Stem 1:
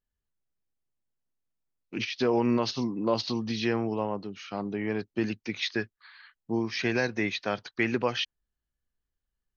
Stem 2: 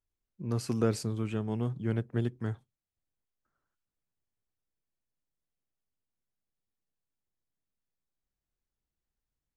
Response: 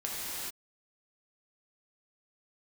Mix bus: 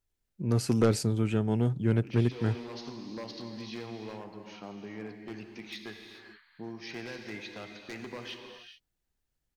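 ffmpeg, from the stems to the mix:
-filter_complex "[0:a]acompressor=threshold=-46dB:ratio=1.5,aeval=exprs='0.0398*(abs(mod(val(0)/0.0398+3,4)-2)-1)':channel_layout=same,adelay=100,volume=-11dB,asplit=2[link_01][link_02];[link_02]volume=-6dB[link_03];[1:a]bandreject=frequency=1100:width=7.1,volume=2dB,asplit=2[link_04][link_05];[link_05]apad=whole_len=430695[link_06];[link_01][link_06]sidechaincompress=threshold=-33dB:ratio=8:attack=16:release=508[link_07];[2:a]atrim=start_sample=2205[link_08];[link_03][link_08]afir=irnorm=-1:irlink=0[link_09];[link_07][link_04][link_09]amix=inputs=3:normalize=0,aeval=exprs='0.237*(cos(1*acos(clip(val(0)/0.237,-1,1)))-cos(1*PI/2))+0.0531*(cos(5*acos(clip(val(0)/0.237,-1,1)))-cos(5*PI/2))+0.0237*(cos(7*acos(clip(val(0)/0.237,-1,1)))-cos(7*PI/2))':channel_layout=same"

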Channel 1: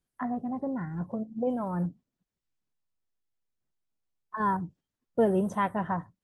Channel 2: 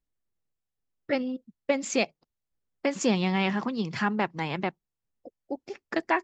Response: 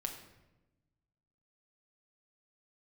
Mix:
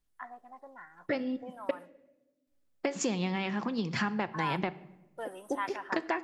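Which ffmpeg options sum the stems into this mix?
-filter_complex "[0:a]highpass=1200,volume=-2.5dB,asplit=2[link_01][link_02];[link_02]volume=-20dB[link_03];[1:a]acompressor=threshold=-31dB:ratio=6,volume=0dB,asplit=3[link_04][link_05][link_06];[link_04]atrim=end=1.71,asetpts=PTS-STARTPTS,afade=type=out:start_time=1.706:duration=0.004:curve=hsin[link_07];[link_05]atrim=start=1.71:end=2.47,asetpts=PTS-STARTPTS,volume=0[link_08];[link_06]atrim=start=2.47,asetpts=PTS-STARTPTS,afade=type=in:duration=0.004:curve=hsin[link_09];[link_07][link_08][link_09]concat=n=3:v=0:a=1,asplit=2[link_10][link_11];[link_11]volume=-6.5dB[link_12];[2:a]atrim=start_sample=2205[link_13];[link_03][link_12]amix=inputs=2:normalize=0[link_14];[link_14][link_13]afir=irnorm=-1:irlink=0[link_15];[link_01][link_10][link_15]amix=inputs=3:normalize=0"

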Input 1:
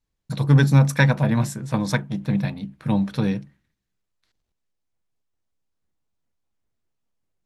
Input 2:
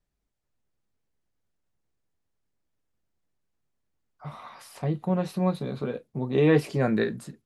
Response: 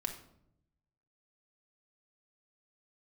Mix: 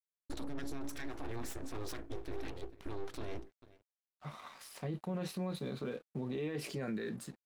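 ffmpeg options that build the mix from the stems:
-filter_complex "[0:a]acompressor=threshold=-19dB:ratio=6,aeval=exprs='abs(val(0))':channel_layout=same,volume=-8dB,asplit=2[link_01][link_02];[link_02]volume=-23.5dB[link_03];[1:a]highpass=frequency=240:poles=1,equalizer=frequency=820:width_type=o:width=1.4:gain=-6,alimiter=limit=-20dB:level=0:latency=1:release=114,volume=0dB[link_04];[link_03]aecho=0:1:443:1[link_05];[link_01][link_04][link_05]amix=inputs=3:normalize=0,aeval=exprs='sgn(val(0))*max(abs(val(0))-0.0015,0)':channel_layout=same,alimiter=level_in=7dB:limit=-24dB:level=0:latency=1:release=28,volume=-7dB"

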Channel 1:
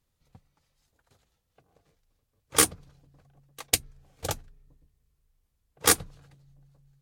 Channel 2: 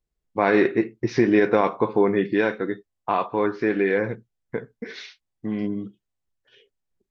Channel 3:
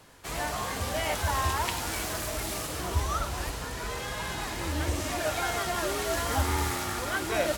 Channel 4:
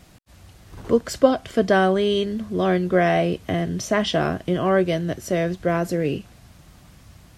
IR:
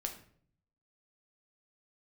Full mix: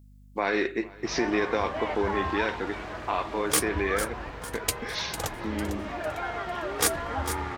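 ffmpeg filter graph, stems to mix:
-filter_complex "[0:a]asoftclip=type=tanh:threshold=-13dB,adelay=950,volume=-1.5dB,asplit=2[link_01][link_02];[link_02]volume=-10.5dB[link_03];[1:a]highpass=210,acompressor=threshold=-37dB:ratio=1.5,crystalizer=i=5:c=0,volume=-1dB,asplit=2[link_04][link_05];[link_05]volume=-23dB[link_06];[2:a]lowpass=2100,lowshelf=frequency=190:gain=-6,adelay=800,volume=-1dB[link_07];[link_03][link_06]amix=inputs=2:normalize=0,aecho=0:1:451|902|1353|1804|2255|2706:1|0.4|0.16|0.064|0.0256|0.0102[link_08];[link_01][link_04][link_07][link_08]amix=inputs=4:normalize=0,aeval=exprs='val(0)+0.00282*(sin(2*PI*50*n/s)+sin(2*PI*2*50*n/s)/2+sin(2*PI*3*50*n/s)/3+sin(2*PI*4*50*n/s)/4+sin(2*PI*5*50*n/s)/5)':channel_layout=same"

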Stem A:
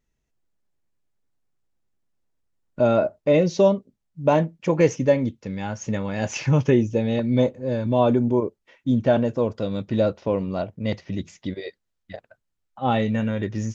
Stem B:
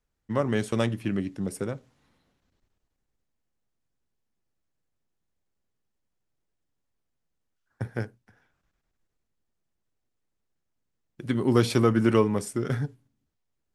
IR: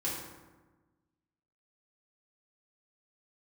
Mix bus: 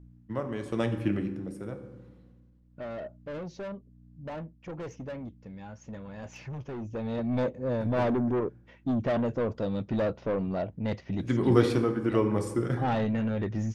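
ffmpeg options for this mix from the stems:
-filter_complex "[0:a]asoftclip=type=tanh:threshold=-22.5dB,volume=-1dB,afade=type=in:start_time=6.76:duration=0.69:silence=0.281838[link_01];[1:a]aeval=exprs='val(0)+0.00316*(sin(2*PI*60*n/s)+sin(2*PI*2*60*n/s)/2+sin(2*PI*3*60*n/s)/3+sin(2*PI*4*60*n/s)/4+sin(2*PI*5*60*n/s)/5)':channel_layout=same,tremolo=f=0.96:d=0.64,volume=-2dB,asplit=2[link_02][link_03];[link_03]volume=-8dB[link_04];[2:a]atrim=start_sample=2205[link_05];[link_04][link_05]afir=irnorm=-1:irlink=0[link_06];[link_01][link_02][link_06]amix=inputs=3:normalize=0,highshelf=frequency=3500:gain=-9.5"

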